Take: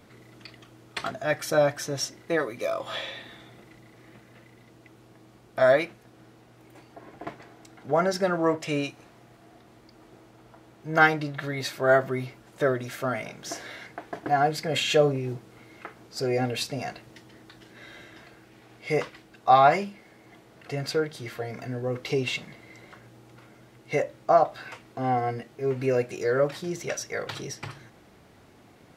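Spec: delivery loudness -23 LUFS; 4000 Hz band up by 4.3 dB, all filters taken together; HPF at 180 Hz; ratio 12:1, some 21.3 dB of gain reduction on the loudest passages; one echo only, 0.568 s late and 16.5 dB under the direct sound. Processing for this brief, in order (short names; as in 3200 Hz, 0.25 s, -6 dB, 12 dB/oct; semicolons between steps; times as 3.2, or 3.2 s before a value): HPF 180 Hz; bell 4000 Hz +5.5 dB; compressor 12:1, threshold -35 dBFS; echo 0.568 s -16.5 dB; gain +17.5 dB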